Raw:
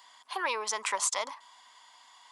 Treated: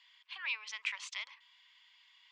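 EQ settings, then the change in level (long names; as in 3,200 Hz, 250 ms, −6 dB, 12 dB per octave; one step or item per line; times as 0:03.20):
high-pass with resonance 2,500 Hz, resonance Q 2.8
high-frequency loss of the air 200 metres
−5.0 dB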